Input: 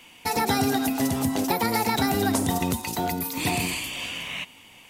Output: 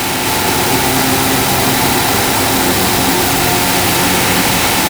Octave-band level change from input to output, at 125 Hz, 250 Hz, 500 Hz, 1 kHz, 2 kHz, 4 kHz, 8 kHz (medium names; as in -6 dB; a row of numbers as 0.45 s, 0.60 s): +12.0 dB, +9.5 dB, +12.5 dB, +13.0 dB, +16.0 dB, +17.0 dB, +17.5 dB